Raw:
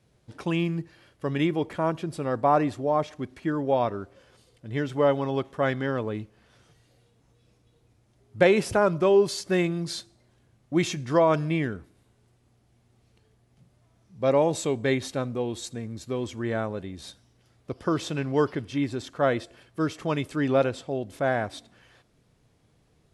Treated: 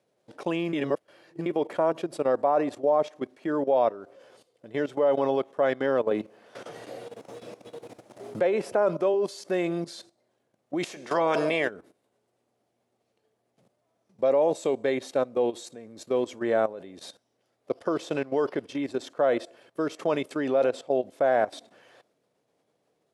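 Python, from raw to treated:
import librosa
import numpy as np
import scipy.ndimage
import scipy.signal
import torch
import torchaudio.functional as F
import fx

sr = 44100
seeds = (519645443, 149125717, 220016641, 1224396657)

y = fx.band_squash(x, sr, depth_pct=70, at=(6.11, 9.14))
y = fx.spec_clip(y, sr, under_db=17, at=(10.83, 11.69), fade=0.02)
y = fx.edit(y, sr, fx.reverse_span(start_s=0.73, length_s=0.73), tone=tone)
y = fx.level_steps(y, sr, step_db=15)
y = scipy.signal.sosfilt(scipy.signal.butter(2, 240.0, 'highpass', fs=sr, output='sos'), y)
y = fx.peak_eq(y, sr, hz=580.0, db=9.0, octaves=1.2)
y = y * 10.0 ** (2.0 / 20.0)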